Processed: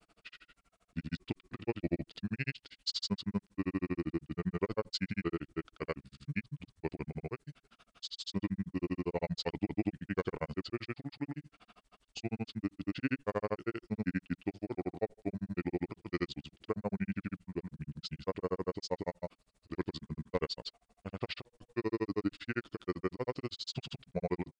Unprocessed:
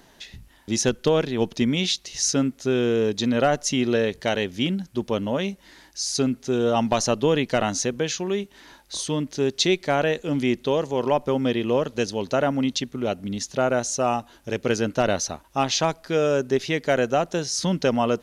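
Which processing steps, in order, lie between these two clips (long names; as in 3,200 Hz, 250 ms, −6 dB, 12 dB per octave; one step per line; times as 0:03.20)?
granular cloud 45 ms, grains 17 per second, pitch spread up and down by 0 semitones
wrong playback speed 45 rpm record played at 33 rpm
level −9 dB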